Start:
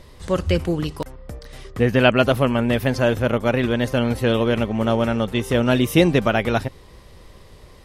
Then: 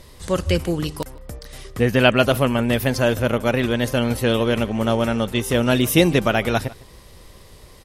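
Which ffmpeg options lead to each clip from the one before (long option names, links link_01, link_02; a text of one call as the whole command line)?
ffmpeg -i in.wav -filter_complex "[0:a]aemphasis=mode=production:type=cd,asplit=2[link_01][link_02];[link_02]adelay=151.6,volume=-21dB,highshelf=frequency=4000:gain=-3.41[link_03];[link_01][link_03]amix=inputs=2:normalize=0" out.wav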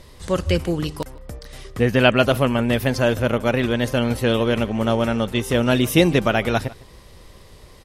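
ffmpeg -i in.wav -af "highshelf=frequency=8500:gain=-6.5" out.wav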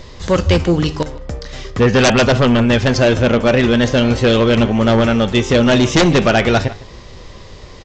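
ffmpeg -i in.wav -af "flanger=delay=7.7:depth=6.2:regen=82:speed=0.42:shape=triangular,aresample=16000,aeval=exprs='0.473*sin(PI/2*3.16*val(0)/0.473)':channel_layout=same,aresample=44100" out.wav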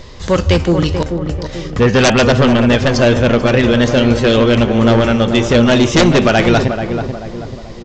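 ffmpeg -i in.wav -filter_complex "[0:a]asplit=2[link_01][link_02];[link_02]adelay=436,lowpass=frequency=1100:poles=1,volume=-6.5dB,asplit=2[link_03][link_04];[link_04]adelay=436,lowpass=frequency=1100:poles=1,volume=0.46,asplit=2[link_05][link_06];[link_06]adelay=436,lowpass=frequency=1100:poles=1,volume=0.46,asplit=2[link_07][link_08];[link_08]adelay=436,lowpass=frequency=1100:poles=1,volume=0.46,asplit=2[link_09][link_10];[link_10]adelay=436,lowpass=frequency=1100:poles=1,volume=0.46[link_11];[link_01][link_03][link_05][link_07][link_09][link_11]amix=inputs=6:normalize=0,volume=1dB" out.wav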